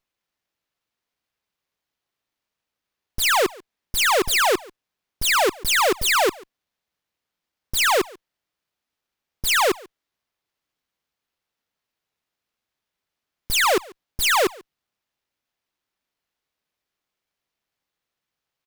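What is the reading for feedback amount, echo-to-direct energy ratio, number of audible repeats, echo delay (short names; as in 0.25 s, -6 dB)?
no steady repeat, -23.5 dB, 1, 0.141 s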